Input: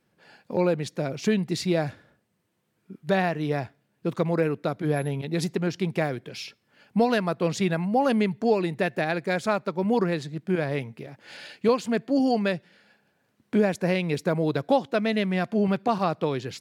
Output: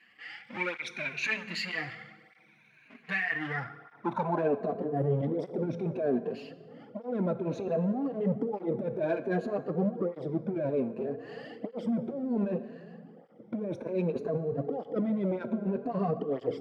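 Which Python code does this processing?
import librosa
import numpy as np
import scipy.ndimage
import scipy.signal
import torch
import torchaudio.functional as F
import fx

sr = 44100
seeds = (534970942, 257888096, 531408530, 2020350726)

y = fx.spec_ripple(x, sr, per_octave=1.5, drift_hz=0.62, depth_db=16)
y = fx.graphic_eq_10(y, sr, hz=(125, 250, 500, 8000), db=(8, 9, -6, -5))
y = fx.power_curve(y, sr, exponent=0.7)
y = fx.filter_sweep_bandpass(y, sr, from_hz=2200.0, to_hz=500.0, start_s=3.18, end_s=4.79, q=4.2)
y = fx.over_compress(y, sr, threshold_db=-31.0, ratio=-1.0)
y = fx.rev_fdn(y, sr, rt60_s=1.7, lf_ratio=1.45, hf_ratio=0.7, size_ms=13.0, drr_db=11.0)
y = fx.flanger_cancel(y, sr, hz=0.64, depth_ms=7.5)
y = y * 10.0 ** (3.0 / 20.0)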